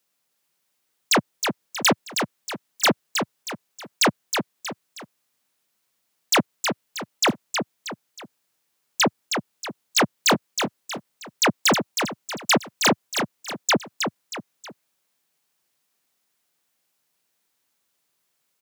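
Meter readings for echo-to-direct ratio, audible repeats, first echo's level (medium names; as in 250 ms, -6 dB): -5.5 dB, 3, -6.0 dB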